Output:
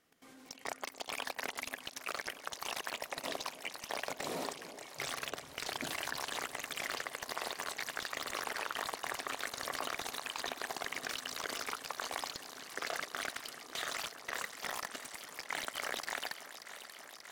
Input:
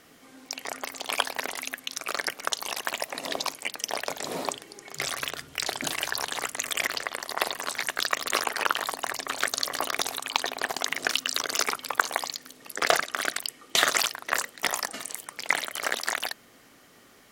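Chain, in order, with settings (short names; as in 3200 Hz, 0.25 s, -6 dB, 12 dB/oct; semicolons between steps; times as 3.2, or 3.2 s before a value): level quantiser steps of 18 dB; echo with dull and thin repeats by turns 0.292 s, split 820 Hz, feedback 89%, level -13 dB; slew limiter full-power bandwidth 120 Hz; gain -2.5 dB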